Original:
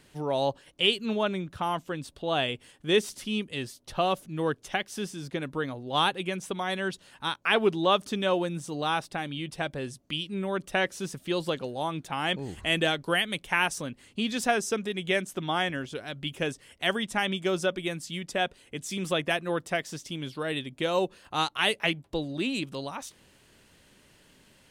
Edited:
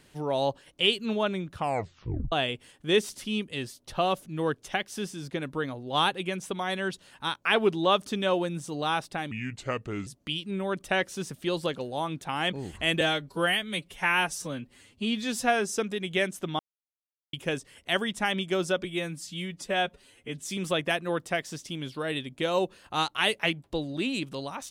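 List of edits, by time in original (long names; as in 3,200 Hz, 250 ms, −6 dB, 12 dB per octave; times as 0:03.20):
0:01.55: tape stop 0.77 s
0:09.31–0:09.90: play speed 78%
0:12.84–0:14.63: time-stretch 1.5×
0:15.53–0:16.27: silence
0:17.78–0:18.85: time-stretch 1.5×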